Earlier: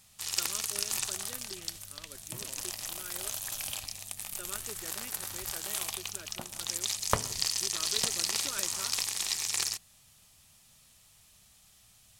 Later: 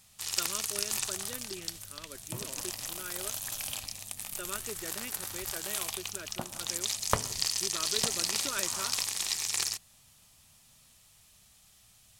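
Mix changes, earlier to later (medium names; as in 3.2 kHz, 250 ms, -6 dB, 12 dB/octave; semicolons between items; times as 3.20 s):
speech +5.0 dB; second sound +5.5 dB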